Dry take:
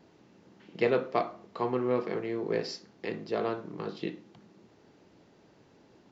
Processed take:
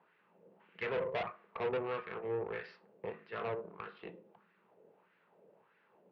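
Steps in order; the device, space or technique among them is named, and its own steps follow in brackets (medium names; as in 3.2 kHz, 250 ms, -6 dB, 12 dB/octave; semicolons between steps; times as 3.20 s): 0.88–1.99 s: peaking EQ 420 Hz +3 dB 2.2 oct; wah-wah guitar rig (wah-wah 1.6 Hz 510–1700 Hz, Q 2.6; valve stage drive 38 dB, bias 0.7; cabinet simulation 110–3700 Hz, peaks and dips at 110 Hz +4 dB, 180 Hz +10 dB, 290 Hz -9 dB, 460 Hz +4 dB, 730 Hz -4 dB, 2.6 kHz +5 dB); trim +6 dB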